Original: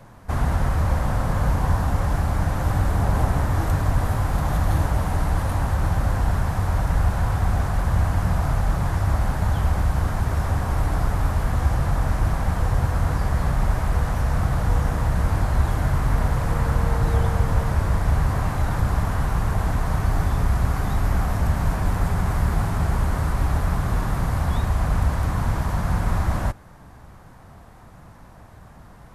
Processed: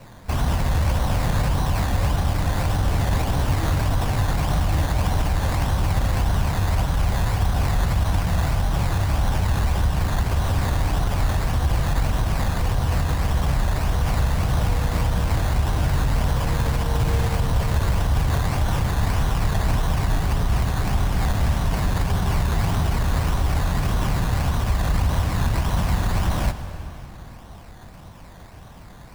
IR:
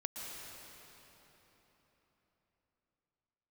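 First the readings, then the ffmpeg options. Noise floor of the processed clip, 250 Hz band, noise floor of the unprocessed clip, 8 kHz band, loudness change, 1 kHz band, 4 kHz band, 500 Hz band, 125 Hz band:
−42 dBFS, +0.5 dB, −46 dBFS, +4.5 dB, +0.5 dB, 0.0 dB, +8.0 dB, +0.5 dB, 0.0 dB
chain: -filter_complex "[0:a]bandreject=frequency=1300:width=19,alimiter=limit=-15.5dB:level=0:latency=1:release=42,acrusher=samples=13:mix=1:aa=0.000001:lfo=1:lforange=7.8:lforate=1.7,asplit=2[link_01][link_02];[1:a]atrim=start_sample=2205,asetrate=52920,aresample=44100[link_03];[link_02][link_03]afir=irnorm=-1:irlink=0,volume=-5dB[link_04];[link_01][link_04]amix=inputs=2:normalize=0"

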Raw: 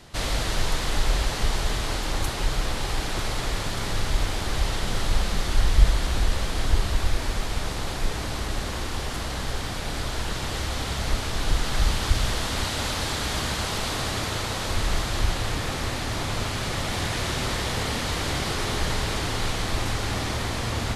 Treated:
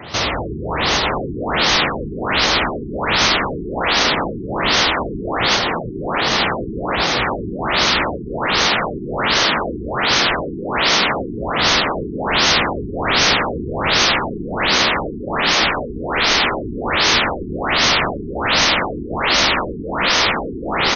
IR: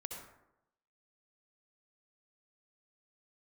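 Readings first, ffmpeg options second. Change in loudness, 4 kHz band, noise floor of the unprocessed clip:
+10.5 dB, +13.0 dB, −30 dBFS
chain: -filter_complex "[0:a]acompressor=threshold=-23dB:ratio=10,highpass=frequency=62:width=0.5412,highpass=frequency=62:width=1.3066,lowshelf=frequency=240:gain=-7.5,asplit=2[link_01][link_02];[link_02]aecho=0:1:246|492:0.126|0.0201[link_03];[link_01][link_03]amix=inputs=2:normalize=0,aeval=exprs='0.141*sin(PI/2*3.98*val(0)/0.141)':channel_layout=same,dynaudnorm=framelen=410:gausssize=5:maxgain=6.5dB,equalizer=frequency=1600:width_type=o:width=0.28:gain=-3,afftfilt=real='re*lt(hypot(re,im),0.447)':imag='im*lt(hypot(re,im),0.447)':win_size=1024:overlap=0.75,afftfilt=real='re*lt(b*sr/1024,420*pow(6700/420,0.5+0.5*sin(2*PI*1.3*pts/sr)))':imag='im*lt(b*sr/1024,420*pow(6700/420,0.5+0.5*sin(2*PI*1.3*pts/sr)))':win_size=1024:overlap=0.75,volume=2.5dB"

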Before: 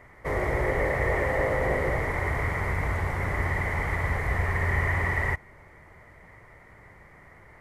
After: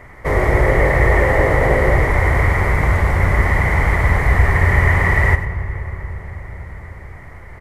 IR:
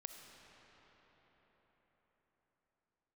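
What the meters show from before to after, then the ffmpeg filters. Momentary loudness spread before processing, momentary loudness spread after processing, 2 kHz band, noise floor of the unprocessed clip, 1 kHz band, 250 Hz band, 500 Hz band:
3 LU, 16 LU, +10.5 dB, −52 dBFS, +10.5 dB, +11.5 dB, +10.0 dB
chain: -filter_complex "[0:a]aecho=1:1:97:0.266,asplit=2[link_01][link_02];[1:a]atrim=start_sample=2205,asetrate=38808,aresample=44100,lowshelf=frequency=140:gain=11.5[link_03];[link_02][link_03]afir=irnorm=-1:irlink=0,volume=-2.5dB[link_04];[link_01][link_04]amix=inputs=2:normalize=0,volume=7dB"

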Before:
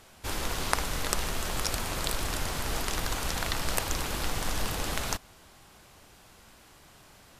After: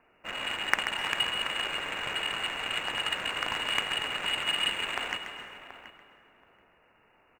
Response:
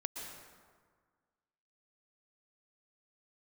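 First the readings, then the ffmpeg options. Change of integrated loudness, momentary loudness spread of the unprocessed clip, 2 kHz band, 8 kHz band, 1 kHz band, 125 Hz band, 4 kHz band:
+2.0 dB, 3 LU, +5.5 dB, −10.5 dB, −0.5 dB, −15.5 dB, +7.0 dB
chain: -filter_complex "[0:a]lowpass=frequency=2500:width_type=q:width=0.5098,lowpass=frequency=2500:width_type=q:width=0.6013,lowpass=frequency=2500:width_type=q:width=0.9,lowpass=frequency=2500:width_type=q:width=2.563,afreqshift=-2900,adynamicsmooth=sensitivity=2:basefreq=940,asplit=2[link_01][link_02];[link_02]adelay=729,lowpass=frequency=1800:poles=1,volume=-12dB,asplit=2[link_03][link_04];[link_04]adelay=729,lowpass=frequency=1800:poles=1,volume=0.18[link_05];[link_01][link_03][link_05]amix=inputs=3:normalize=0,asplit=2[link_06][link_07];[1:a]atrim=start_sample=2205,adelay=134[link_08];[link_07][link_08]afir=irnorm=-1:irlink=0,volume=-6.5dB[link_09];[link_06][link_09]amix=inputs=2:normalize=0,acrusher=bits=7:mode=log:mix=0:aa=0.000001,volume=3dB"

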